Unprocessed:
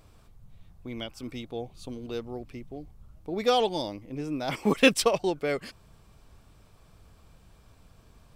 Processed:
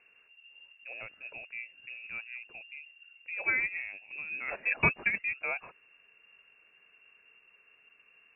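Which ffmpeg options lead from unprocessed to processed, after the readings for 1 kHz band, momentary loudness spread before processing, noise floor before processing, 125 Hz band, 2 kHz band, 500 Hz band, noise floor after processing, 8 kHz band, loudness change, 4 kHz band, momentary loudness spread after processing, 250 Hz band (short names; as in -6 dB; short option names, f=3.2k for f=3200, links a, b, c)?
-11.0 dB, 21 LU, -58 dBFS, -7.0 dB, +4.0 dB, -18.5 dB, -65 dBFS, under -40 dB, -4.5 dB, under -20 dB, 18 LU, -18.0 dB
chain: -af "lowpass=f=2.4k:t=q:w=0.5098,lowpass=f=2.4k:t=q:w=0.6013,lowpass=f=2.4k:t=q:w=0.9,lowpass=f=2.4k:t=q:w=2.563,afreqshift=-2800,highshelf=f=2k:g=-11.5"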